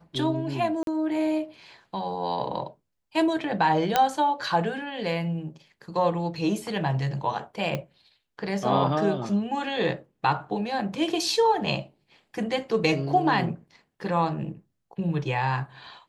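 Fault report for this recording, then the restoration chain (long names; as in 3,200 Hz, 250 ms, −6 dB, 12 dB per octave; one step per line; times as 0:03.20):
0:00.83–0:00.87: drop-out 42 ms
0:03.96: click −6 dBFS
0:07.75: click −15 dBFS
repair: click removal
repair the gap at 0:00.83, 42 ms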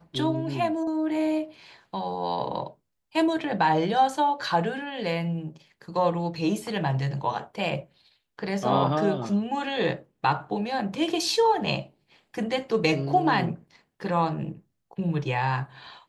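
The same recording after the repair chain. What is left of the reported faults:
0:07.75: click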